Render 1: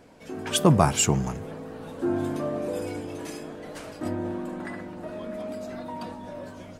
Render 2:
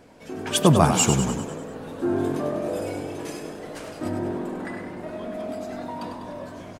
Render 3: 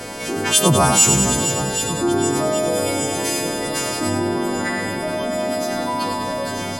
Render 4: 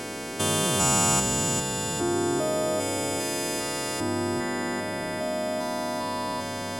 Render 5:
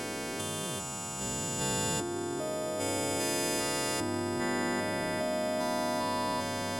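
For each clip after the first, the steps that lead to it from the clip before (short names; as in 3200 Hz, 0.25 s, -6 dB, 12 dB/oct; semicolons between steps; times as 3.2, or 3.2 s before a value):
frequency-shifting echo 99 ms, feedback 56%, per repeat +43 Hz, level -7.5 dB; gain +1.5 dB
frequency quantiser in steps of 2 st; swung echo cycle 0.775 s, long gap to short 1.5:1, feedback 55%, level -16 dB; fast leveller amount 50%; gain -1 dB
stepped spectrum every 0.4 s; gain -5.5 dB
negative-ratio compressor -29 dBFS, ratio -1; gain -3.5 dB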